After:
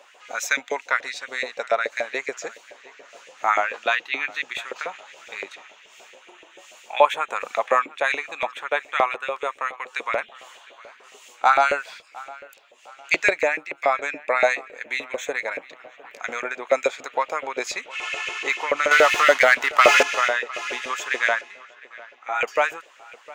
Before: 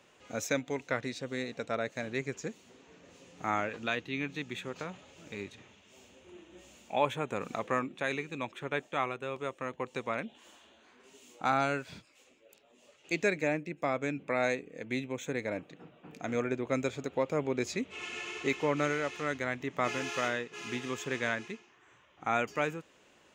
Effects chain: 18.91–20.03 s: waveshaping leveller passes 3; LFO high-pass saw up 7 Hz 500–2400 Hz; 21.41–22.41 s: feedback comb 68 Hz, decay 0.43 s, harmonics all, mix 90%; feedback echo behind a low-pass 707 ms, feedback 39%, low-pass 4 kHz, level -21 dB; trim +8.5 dB

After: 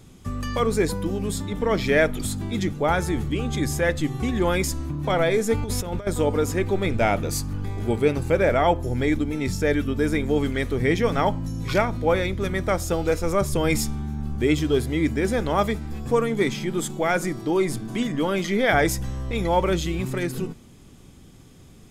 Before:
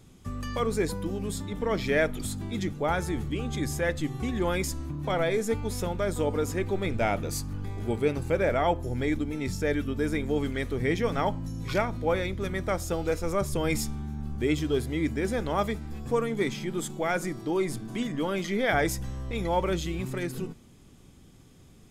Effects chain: 5.54–6.07 s: compressor with a negative ratio -32 dBFS, ratio -0.5; trim +5.5 dB

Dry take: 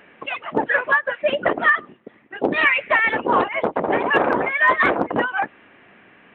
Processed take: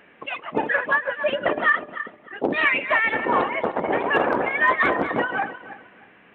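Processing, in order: backward echo that repeats 155 ms, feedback 48%, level -10 dB; trim -3 dB

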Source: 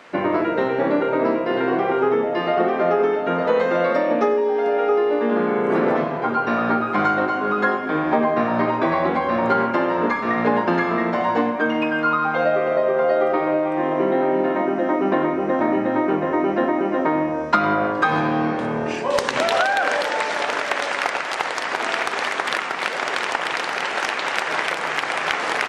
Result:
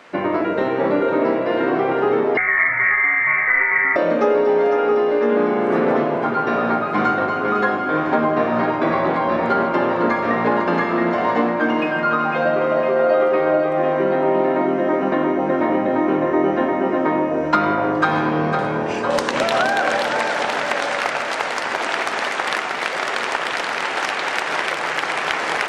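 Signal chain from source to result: on a send: echo whose repeats swap between lows and highs 252 ms, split 850 Hz, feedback 81%, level -6 dB; 2.37–3.96 s: on the sum: frequency inversion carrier 2.5 kHz

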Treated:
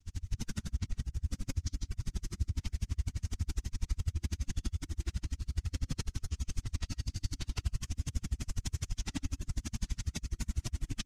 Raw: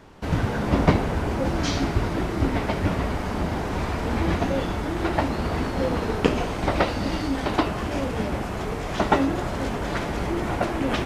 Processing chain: valve stage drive 19 dB, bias 0.3; granulator, pitch spread up and down by 0 st; resonant low shelf 120 Hz +12 dB, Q 1.5; gain riding; on a send at -3.5 dB: reverberation RT60 0.45 s, pre-delay 75 ms; on the sum: reverb removal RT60 0.53 s; FFT filter 220 Hz 0 dB, 540 Hz -26 dB, 4.2 kHz +2 dB, 6.3 kHz +13 dB, 13 kHz +5 dB; peak limiter -30 dBFS, peak gain reduction 23.5 dB; hum notches 50/100/150/200 Hz; logarithmic tremolo 12 Hz, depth 39 dB; trim +7.5 dB

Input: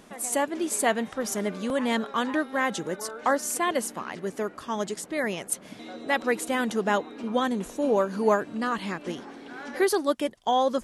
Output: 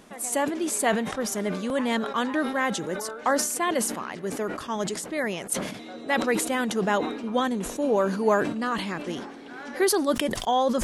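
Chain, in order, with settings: decay stretcher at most 59 dB/s

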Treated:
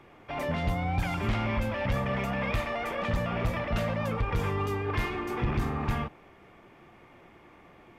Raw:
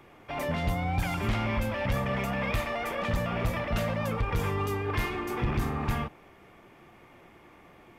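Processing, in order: treble shelf 7.8 kHz -9.5 dB

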